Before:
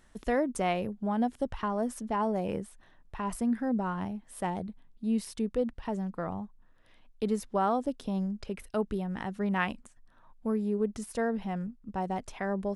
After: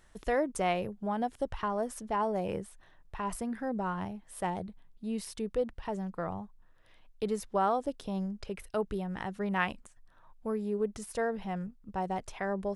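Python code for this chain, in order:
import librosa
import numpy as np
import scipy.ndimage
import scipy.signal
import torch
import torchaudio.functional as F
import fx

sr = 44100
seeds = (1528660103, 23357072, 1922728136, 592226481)

y = fx.peak_eq(x, sr, hz=240.0, db=-8.0, octaves=0.5)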